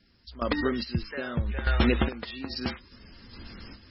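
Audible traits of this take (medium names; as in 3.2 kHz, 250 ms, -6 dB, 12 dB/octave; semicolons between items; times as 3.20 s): random-step tremolo 2.4 Hz, depth 90%; MP3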